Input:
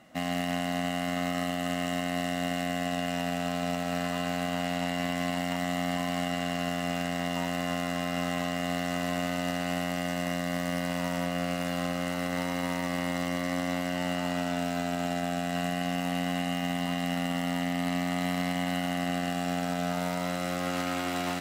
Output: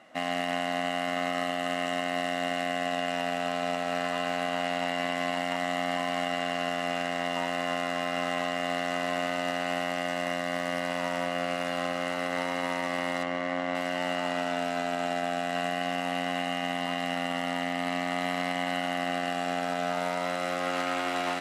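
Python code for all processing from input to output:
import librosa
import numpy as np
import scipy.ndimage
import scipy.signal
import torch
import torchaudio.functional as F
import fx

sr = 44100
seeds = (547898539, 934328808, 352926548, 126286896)

y = fx.chain(x, sr, fx.median_filter(points=9),
    fx.lowpass(hz=7200.0, slope=12), at=(13.23, 13.75))
y = scipy.signal.sosfilt(scipy.signal.butter(4, 12000.0, 'lowpass', fs=sr, output='sos'), y)
y = fx.bass_treble(y, sr, bass_db=-15, treble_db=-7)
y = y * librosa.db_to_amplitude(3.5)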